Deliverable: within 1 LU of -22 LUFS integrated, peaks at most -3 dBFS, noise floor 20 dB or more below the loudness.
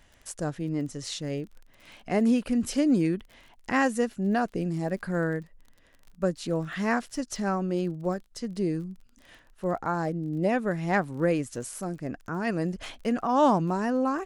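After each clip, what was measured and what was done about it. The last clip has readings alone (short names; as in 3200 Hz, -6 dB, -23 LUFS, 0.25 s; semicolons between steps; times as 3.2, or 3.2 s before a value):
ticks 30/s; loudness -28.5 LUFS; peak -12.0 dBFS; loudness target -22.0 LUFS
-> de-click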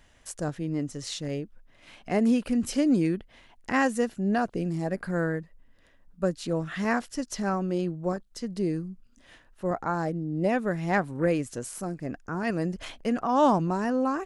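ticks 0/s; loudness -28.5 LUFS; peak -12.0 dBFS; loudness target -22.0 LUFS
-> gain +6.5 dB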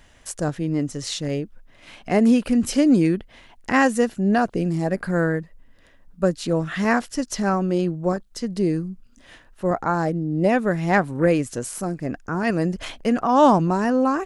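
loudness -22.0 LUFS; peak -5.5 dBFS; noise floor -52 dBFS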